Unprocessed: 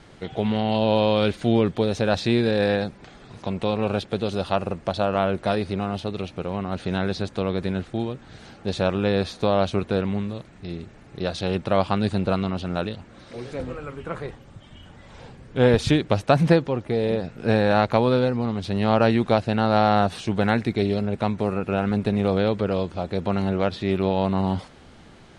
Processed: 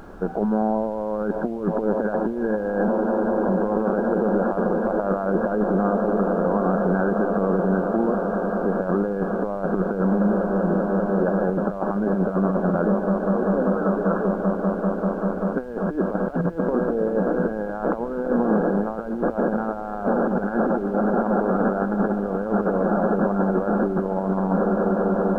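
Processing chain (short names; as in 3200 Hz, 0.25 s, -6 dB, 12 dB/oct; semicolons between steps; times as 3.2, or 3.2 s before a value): FFT band-pass 170–1700 Hz; on a send: swelling echo 0.195 s, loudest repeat 8, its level -17.5 dB; on the sum: negative-ratio compressor -25 dBFS, ratio -0.5; limiter -17 dBFS, peak gain reduction 6.5 dB; added noise brown -49 dBFS; gain +5.5 dB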